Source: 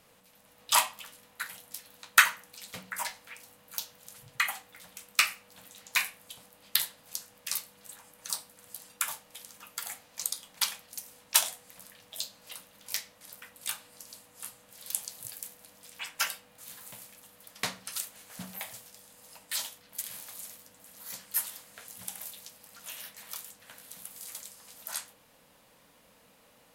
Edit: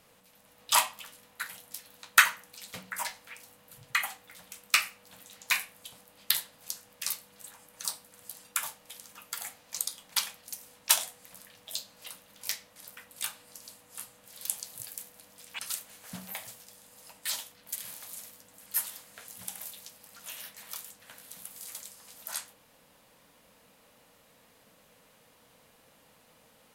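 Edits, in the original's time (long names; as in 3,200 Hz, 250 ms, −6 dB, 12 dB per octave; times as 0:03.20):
0:03.73–0:04.18: remove
0:16.04–0:17.85: remove
0:20.92–0:21.26: remove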